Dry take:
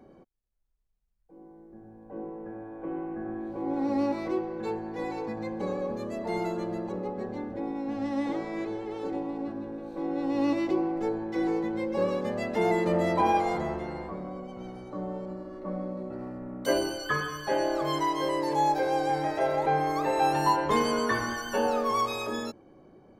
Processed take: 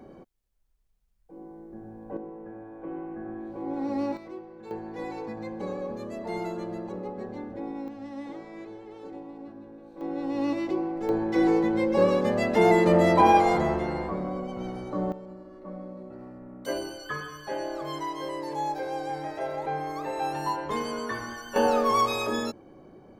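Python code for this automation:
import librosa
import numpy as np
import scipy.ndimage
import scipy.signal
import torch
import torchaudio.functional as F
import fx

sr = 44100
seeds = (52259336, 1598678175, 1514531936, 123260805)

y = fx.gain(x, sr, db=fx.steps((0.0, 6.0), (2.17, -2.0), (4.17, -11.0), (4.71, -2.0), (7.88, -8.5), (10.01, -1.5), (11.09, 6.0), (15.12, -5.5), (21.56, 4.0)))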